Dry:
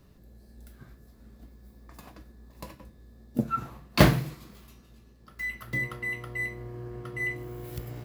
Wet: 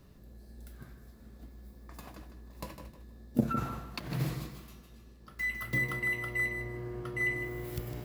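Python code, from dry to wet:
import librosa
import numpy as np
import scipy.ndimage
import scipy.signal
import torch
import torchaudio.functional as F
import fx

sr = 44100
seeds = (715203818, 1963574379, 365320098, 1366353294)

y = fx.over_compress(x, sr, threshold_db=-32.0, ratio=-1.0, at=(3.4, 4.46), fade=0.02)
y = fx.high_shelf(y, sr, hz=12000.0, db=7.0, at=(5.55, 6.45))
y = fx.echo_feedback(y, sr, ms=155, feedback_pct=28, wet_db=-9.5)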